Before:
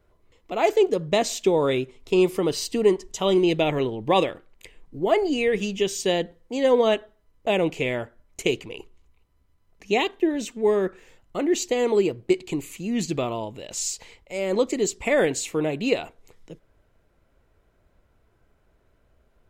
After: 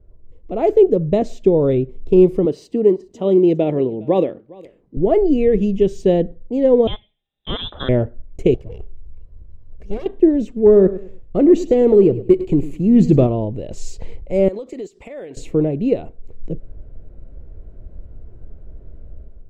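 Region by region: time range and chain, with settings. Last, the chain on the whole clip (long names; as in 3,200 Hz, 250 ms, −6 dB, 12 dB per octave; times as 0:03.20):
0:02.45–0:04.97: high-pass filter 200 Hz + single-tap delay 409 ms −23.5 dB
0:06.87–0:07.89: high-pass filter 110 Hz 24 dB per octave + voice inversion scrambler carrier 3,800 Hz
0:08.54–0:10.06: lower of the sound and its delayed copy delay 1.8 ms + downward compressor 1.5 to 1, threshold −50 dBFS
0:10.66–0:13.27: leveller curve on the samples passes 1 + repeating echo 103 ms, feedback 29%, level −15 dB
0:14.48–0:15.37: high-pass filter 1,500 Hz 6 dB per octave + downward compressor 16 to 1, threshold −37 dBFS
whole clip: low shelf with overshoot 740 Hz +6 dB, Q 1.5; automatic gain control; spectral tilt −4 dB per octave; level −7.5 dB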